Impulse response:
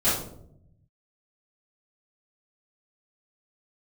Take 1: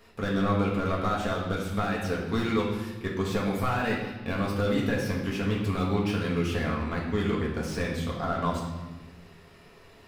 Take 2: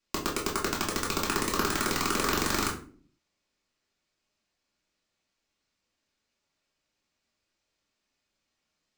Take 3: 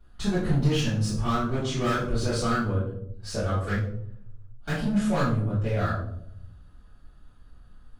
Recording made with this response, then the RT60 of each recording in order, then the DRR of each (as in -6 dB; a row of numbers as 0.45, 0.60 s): 3; 1.2, 0.45, 0.70 s; -4.0, -5.0, -13.5 dB